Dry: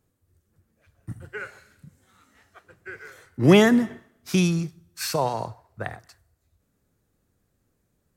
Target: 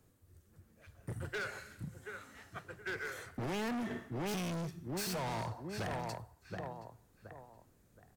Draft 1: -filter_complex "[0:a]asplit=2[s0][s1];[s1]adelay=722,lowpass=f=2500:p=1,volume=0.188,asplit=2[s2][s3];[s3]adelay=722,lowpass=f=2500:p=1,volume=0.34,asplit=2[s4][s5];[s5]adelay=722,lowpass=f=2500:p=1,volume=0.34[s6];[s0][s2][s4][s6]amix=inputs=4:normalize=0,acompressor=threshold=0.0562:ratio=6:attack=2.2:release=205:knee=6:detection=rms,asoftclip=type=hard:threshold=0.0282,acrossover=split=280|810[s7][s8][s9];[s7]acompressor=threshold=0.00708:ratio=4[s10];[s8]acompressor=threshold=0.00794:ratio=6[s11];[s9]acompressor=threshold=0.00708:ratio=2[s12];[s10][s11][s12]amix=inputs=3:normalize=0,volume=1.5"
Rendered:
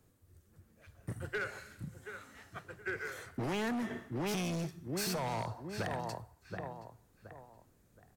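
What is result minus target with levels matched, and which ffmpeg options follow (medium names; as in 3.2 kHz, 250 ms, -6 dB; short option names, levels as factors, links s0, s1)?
hard clipper: distortion -5 dB
-filter_complex "[0:a]asplit=2[s0][s1];[s1]adelay=722,lowpass=f=2500:p=1,volume=0.188,asplit=2[s2][s3];[s3]adelay=722,lowpass=f=2500:p=1,volume=0.34,asplit=2[s4][s5];[s5]adelay=722,lowpass=f=2500:p=1,volume=0.34[s6];[s0][s2][s4][s6]amix=inputs=4:normalize=0,acompressor=threshold=0.0562:ratio=6:attack=2.2:release=205:knee=6:detection=rms,asoftclip=type=hard:threshold=0.0133,acrossover=split=280|810[s7][s8][s9];[s7]acompressor=threshold=0.00708:ratio=4[s10];[s8]acompressor=threshold=0.00794:ratio=6[s11];[s9]acompressor=threshold=0.00708:ratio=2[s12];[s10][s11][s12]amix=inputs=3:normalize=0,volume=1.5"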